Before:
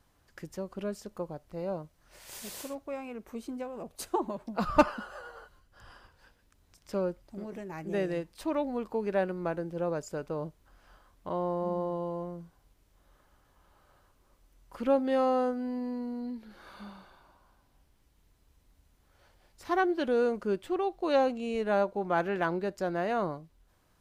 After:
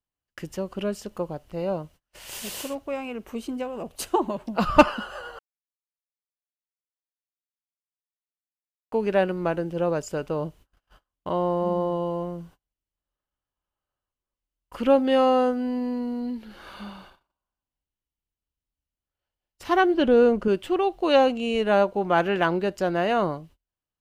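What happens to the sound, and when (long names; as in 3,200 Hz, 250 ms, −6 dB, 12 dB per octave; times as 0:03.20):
0:05.39–0:08.92: silence
0:19.94–0:20.48: spectral tilt −2 dB per octave
whole clip: noise gate −55 dBFS, range −33 dB; parametric band 2,900 Hz +9 dB 0.27 octaves; level +7 dB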